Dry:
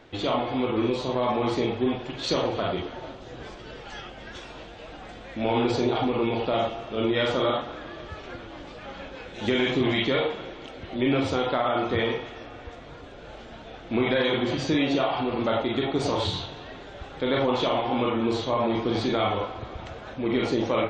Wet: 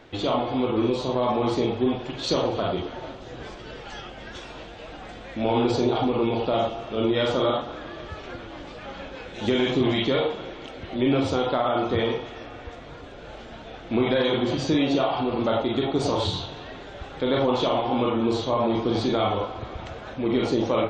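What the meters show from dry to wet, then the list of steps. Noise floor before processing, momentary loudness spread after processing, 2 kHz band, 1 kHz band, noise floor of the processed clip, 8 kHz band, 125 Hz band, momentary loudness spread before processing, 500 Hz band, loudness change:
-43 dBFS, 17 LU, -2.5 dB, +1.0 dB, -41 dBFS, +1.5 dB, +2.0 dB, 17 LU, +2.0 dB, +1.5 dB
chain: dynamic EQ 2000 Hz, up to -6 dB, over -44 dBFS, Q 1.5; gain +2 dB

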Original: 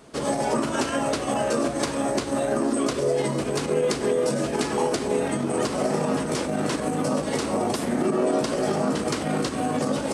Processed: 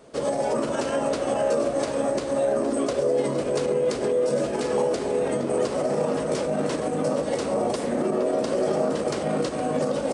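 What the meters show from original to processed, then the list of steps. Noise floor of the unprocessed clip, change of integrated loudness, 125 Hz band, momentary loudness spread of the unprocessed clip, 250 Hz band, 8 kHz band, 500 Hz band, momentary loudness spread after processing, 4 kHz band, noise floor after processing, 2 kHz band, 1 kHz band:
-30 dBFS, 0.0 dB, -3.5 dB, 3 LU, -3.0 dB, -5.0 dB, +2.0 dB, 3 LU, -4.5 dB, -29 dBFS, -4.0 dB, -2.0 dB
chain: bell 530 Hz +9 dB 0.69 oct; limiter -11.5 dBFS, peak gain reduction 5 dB; outdoor echo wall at 80 m, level -8 dB; downsampling 22050 Hz; gain -4 dB

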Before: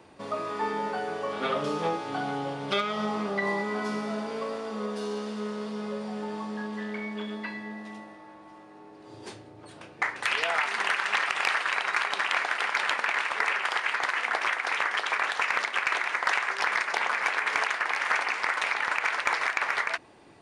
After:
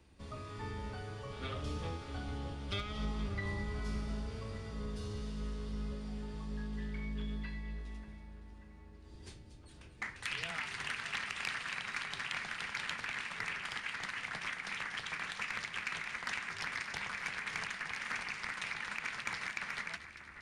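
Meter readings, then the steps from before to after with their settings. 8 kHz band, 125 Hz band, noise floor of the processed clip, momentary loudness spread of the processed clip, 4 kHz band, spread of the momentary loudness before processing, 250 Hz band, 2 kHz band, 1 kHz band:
-7.5 dB, +2.5 dB, -54 dBFS, 10 LU, -9.0 dB, 9 LU, -9.5 dB, -12.0 dB, -16.5 dB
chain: octaver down 2 oct, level +4 dB; bell 740 Hz -11.5 dB 2.4 oct; split-band echo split 2200 Hz, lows 0.587 s, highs 0.235 s, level -12 dB; gain -7.5 dB

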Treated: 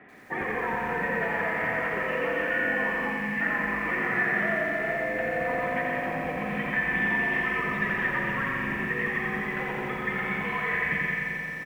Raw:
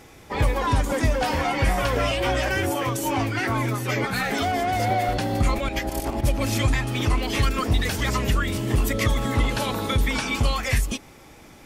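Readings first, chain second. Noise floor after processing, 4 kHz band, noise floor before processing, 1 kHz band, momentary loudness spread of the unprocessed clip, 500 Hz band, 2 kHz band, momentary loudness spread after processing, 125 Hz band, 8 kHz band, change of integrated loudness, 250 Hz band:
-33 dBFS, -15.0 dB, -47 dBFS, -5.0 dB, 3 LU, -4.0 dB, +4.0 dB, 5 LU, -14.5 dB, under -20 dB, -3.0 dB, -6.0 dB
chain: rattling part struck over -31 dBFS, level -25 dBFS; mistuned SSB -68 Hz 210–2600 Hz; echo 0.126 s -6 dB; spring tank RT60 3.1 s, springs 43/56 ms, chirp 55 ms, DRR 3.5 dB; compressor 4:1, threshold -26 dBFS, peak gain reduction 8.5 dB; spectral delete 3.13–3.41, 300–1600 Hz; bell 1800 Hz +13 dB 0.21 oct; lo-fi delay 87 ms, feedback 80%, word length 9-bit, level -4.5 dB; gain -4 dB

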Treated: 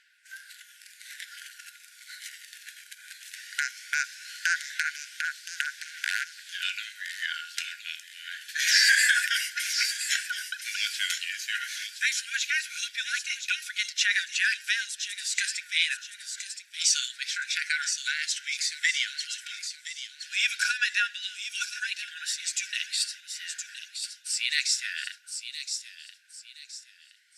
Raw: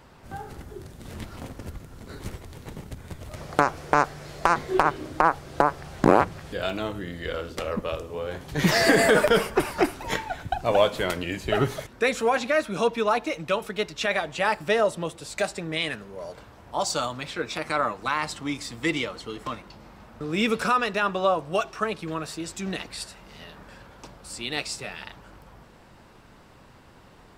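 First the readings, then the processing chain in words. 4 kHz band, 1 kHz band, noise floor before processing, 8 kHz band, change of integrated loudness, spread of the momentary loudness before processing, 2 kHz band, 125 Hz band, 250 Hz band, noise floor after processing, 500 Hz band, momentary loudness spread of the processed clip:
+5.5 dB, -17.0 dB, -52 dBFS, +8.5 dB, -2.5 dB, 18 LU, +2.5 dB, under -40 dB, under -40 dB, -54 dBFS, under -40 dB, 19 LU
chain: phaser 0.17 Hz, delay 1.3 ms, feedback 32%; dynamic EQ 6000 Hz, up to +7 dB, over -49 dBFS, Q 1.7; in parallel at -1.5 dB: compressor, threshold -31 dBFS, peak gain reduction 20.5 dB; on the sum: wavefolder -5 dBFS; gate -38 dBFS, range -10 dB; brick-wall FIR band-pass 1400–13000 Hz; on a send: thin delay 1.019 s, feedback 33%, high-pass 3500 Hz, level -6 dB

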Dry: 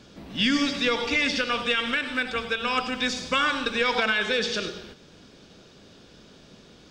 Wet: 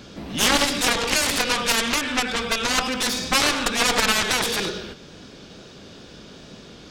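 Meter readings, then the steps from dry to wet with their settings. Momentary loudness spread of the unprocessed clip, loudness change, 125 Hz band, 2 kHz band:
5 LU, +4.0 dB, +6.5 dB, +2.0 dB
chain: added harmonics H 4 -7 dB, 7 -6 dB, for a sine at -11.5 dBFS; wow and flutter 27 cents

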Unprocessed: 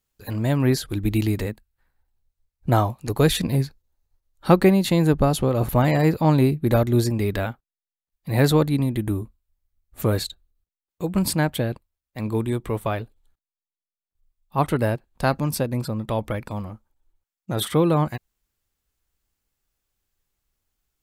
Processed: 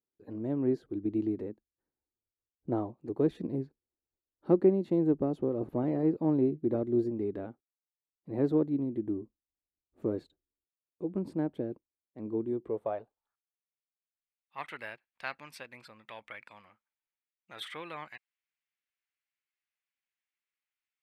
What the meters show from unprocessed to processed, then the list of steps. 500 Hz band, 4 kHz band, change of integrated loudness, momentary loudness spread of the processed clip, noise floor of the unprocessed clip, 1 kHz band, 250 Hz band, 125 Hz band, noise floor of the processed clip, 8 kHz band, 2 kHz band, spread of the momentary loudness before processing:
-8.5 dB, under -15 dB, -9.5 dB, 18 LU, under -85 dBFS, -17.0 dB, -8.0 dB, -18.0 dB, under -85 dBFS, under -30 dB, -15.0 dB, 14 LU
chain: added harmonics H 4 -25 dB, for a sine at -1.5 dBFS; band-pass sweep 340 Hz -> 2200 Hz, 12.61–13.68; gain -4 dB

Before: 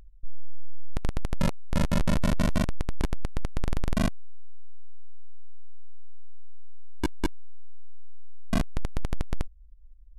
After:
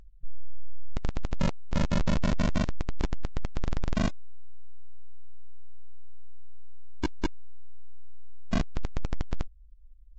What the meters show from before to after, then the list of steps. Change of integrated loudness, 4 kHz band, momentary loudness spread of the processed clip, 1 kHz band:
-1.5 dB, -1.5 dB, 9 LU, -1.5 dB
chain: gain -1.5 dB; Vorbis 32 kbps 16000 Hz

